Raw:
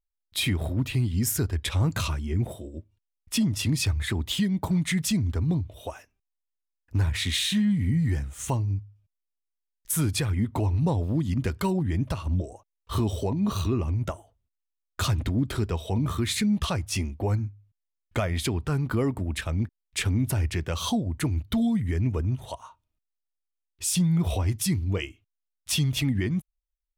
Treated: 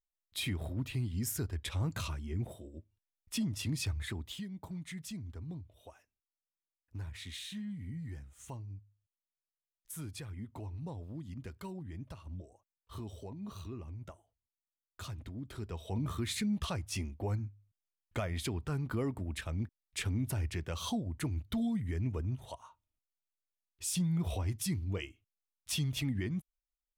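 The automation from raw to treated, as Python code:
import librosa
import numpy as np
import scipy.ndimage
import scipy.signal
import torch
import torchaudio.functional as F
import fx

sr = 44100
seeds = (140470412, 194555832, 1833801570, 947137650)

y = fx.gain(x, sr, db=fx.line((4.05, -10.0), (4.46, -18.0), (15.4, -18.0), (15.98, -9.0)))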